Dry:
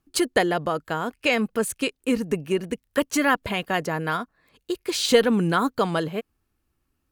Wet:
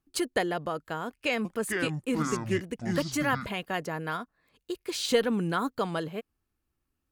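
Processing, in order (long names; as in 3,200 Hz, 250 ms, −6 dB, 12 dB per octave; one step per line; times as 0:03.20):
0:01.07–0:03.46: delay with pitch and tempo change per echo 376 ms, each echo −6 semitones, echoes 2
level −7 dB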